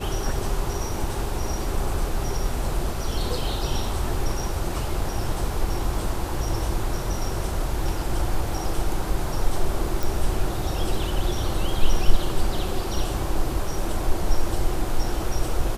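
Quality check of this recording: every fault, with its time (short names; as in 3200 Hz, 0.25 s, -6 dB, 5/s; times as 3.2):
10.03 pop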